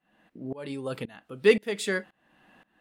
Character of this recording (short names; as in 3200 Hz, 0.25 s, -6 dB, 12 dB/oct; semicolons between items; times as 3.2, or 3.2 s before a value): tremolo saw up 1.9 Hz, depth 95%